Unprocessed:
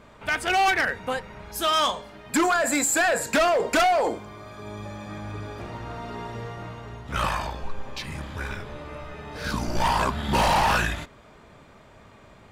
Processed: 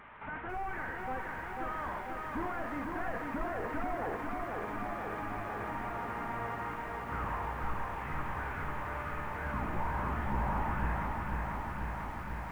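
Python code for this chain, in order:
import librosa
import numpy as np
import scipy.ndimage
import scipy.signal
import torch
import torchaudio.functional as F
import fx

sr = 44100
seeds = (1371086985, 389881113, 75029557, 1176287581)

y = fx.delta_mod(x, sr, bps=16000, step_db=-44.5)
y = fx.band_shelf(y, sr, hz=1300.0, db=9.5, octaves=1.7)
y = fx.echo_feedback(y, sr, ms=81, feedback_pct=55, wet_db=-13.5)
y = fx.echo_crushed(y, sr, ms=493, feedback_pct=80, bits=9, wet_db=-3.5)
y = y * librosa.db_to_amplitude(-9.0)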